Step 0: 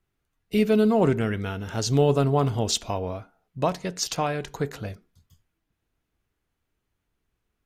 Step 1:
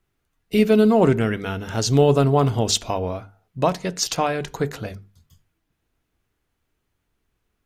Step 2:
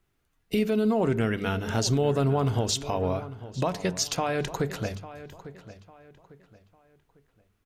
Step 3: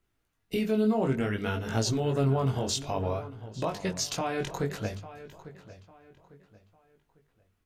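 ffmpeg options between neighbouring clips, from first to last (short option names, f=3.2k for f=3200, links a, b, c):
-af "bandreject=f=50:t=h:w=6,bandreject=f=100:t=h:w=6,bandreject=f=150:t=h:w=6,bandreject=f=200:t=h:w=6,volume=4.5dB"
-filter_complex "[0:a]alimiter=limit=-16dB:level=0:latency=1:release=178,asplit=2[a][b];[b]adelay=850,lowpass=f=3.5k:p=1,volume=-15dB,asplit=2[c][d];[d]adelay=850,lowpass=f=3.5k:p=1,volume=0.34,asplit=2[e][f];[f]adelay=850,lowpass=f=3.5k:p=1,volume=0.34[g];[a][c][e][g]amix=inputs=4:normalize=0"
-af "flanger=delay=18:depth=5.1:speed=0.58"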